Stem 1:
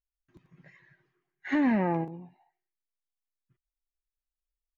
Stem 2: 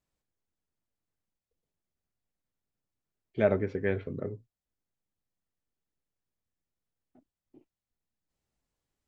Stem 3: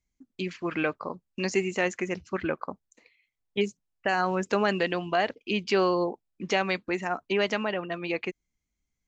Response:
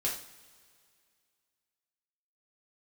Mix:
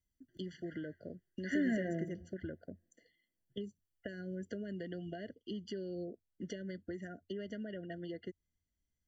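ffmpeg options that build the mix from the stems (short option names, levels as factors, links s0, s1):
-filter_complex "[0:a]highshelf=f=3900:g=11,volume=0.355,asplit=2[s0][s1];[s1]volume=0.126[s2];[2:a]acrossover=split=340[s3][s4];[s4]acompressor=threshold=0.0126:ratio=6[s5];[s3][s5]amix=inputs=2:normalize=0,equalizer=f=88:t=o:w=0.31:g=11.5,volume=0.531,acompressor=threshold=0.0126:ratio=6,volume=1[s6];[3:a]atrim=start_sample=2205[s7];[s2][s7]afir=irnorm=-1:irlink=0[s8];[s0][s6][s8]amix=inputs=3:normalize=0,afftfilt=real='re*eq(mod(floor(b*sr/1024/700),2),0)':imag='im*eq(mod(floor(b*sr/1024/700),2),0)':win_size=1024:overlap=0.75"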